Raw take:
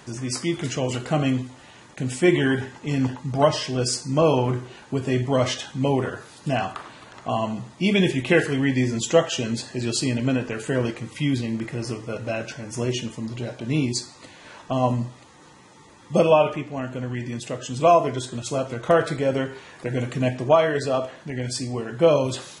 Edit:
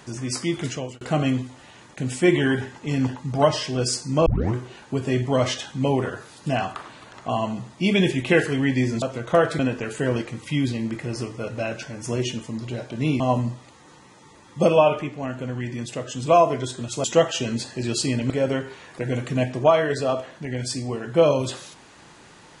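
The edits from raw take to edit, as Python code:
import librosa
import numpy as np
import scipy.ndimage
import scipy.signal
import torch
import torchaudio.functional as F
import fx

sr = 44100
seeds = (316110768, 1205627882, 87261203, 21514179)

y = fx.edit(x, sr, fx.fade_out_span(start_s=0.65, length_s=0.36),
    fx.tape_start(start_s=4.26, length_s=0.28),
    fx.swap(start_s=9.02, length_s=1.26, other_s=18.58, other_length_s=0.57),
    fx.cut(start_s=13.89, length_s=0.85), tone=tone)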